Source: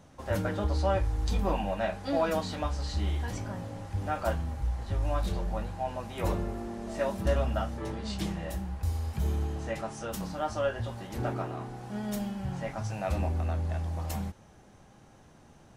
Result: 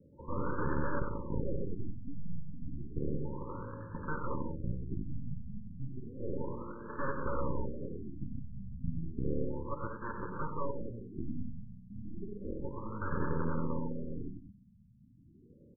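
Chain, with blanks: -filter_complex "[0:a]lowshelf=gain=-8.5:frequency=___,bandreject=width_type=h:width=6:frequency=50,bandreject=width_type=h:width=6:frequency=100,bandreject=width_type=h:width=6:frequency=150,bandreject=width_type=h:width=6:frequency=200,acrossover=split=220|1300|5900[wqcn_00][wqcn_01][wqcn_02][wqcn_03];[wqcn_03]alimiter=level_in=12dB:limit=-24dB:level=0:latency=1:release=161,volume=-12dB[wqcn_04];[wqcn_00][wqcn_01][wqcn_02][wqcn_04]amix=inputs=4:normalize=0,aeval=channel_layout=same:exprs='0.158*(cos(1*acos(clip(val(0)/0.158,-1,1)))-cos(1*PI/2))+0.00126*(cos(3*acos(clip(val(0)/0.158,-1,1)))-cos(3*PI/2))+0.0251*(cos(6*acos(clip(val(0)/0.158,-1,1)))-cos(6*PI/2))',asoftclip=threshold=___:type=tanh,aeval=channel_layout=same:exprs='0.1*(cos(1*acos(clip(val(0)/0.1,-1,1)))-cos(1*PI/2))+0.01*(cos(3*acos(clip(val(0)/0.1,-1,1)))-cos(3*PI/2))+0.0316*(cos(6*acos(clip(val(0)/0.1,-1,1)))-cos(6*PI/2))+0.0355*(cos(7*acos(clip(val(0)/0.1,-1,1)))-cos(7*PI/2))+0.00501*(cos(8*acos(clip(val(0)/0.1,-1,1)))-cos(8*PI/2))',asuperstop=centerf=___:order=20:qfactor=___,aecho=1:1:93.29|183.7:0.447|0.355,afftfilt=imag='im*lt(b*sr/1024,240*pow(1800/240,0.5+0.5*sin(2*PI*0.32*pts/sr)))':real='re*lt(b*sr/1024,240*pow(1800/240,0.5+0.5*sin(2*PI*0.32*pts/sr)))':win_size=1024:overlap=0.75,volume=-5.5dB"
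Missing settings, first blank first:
79, -20dB, 710, 2.4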